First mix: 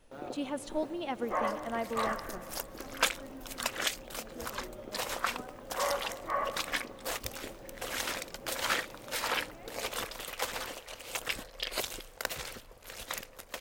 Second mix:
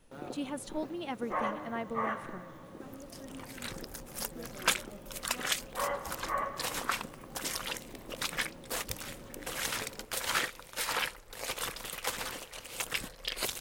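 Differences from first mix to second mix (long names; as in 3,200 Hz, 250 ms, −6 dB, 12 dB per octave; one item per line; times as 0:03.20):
speech: send off
second sound: entry +1.65 s
master: add graphic EQ with 15 bands 160 Hz +6 dB, 630 Hz −4 dB, 10,000 Hz +4 dB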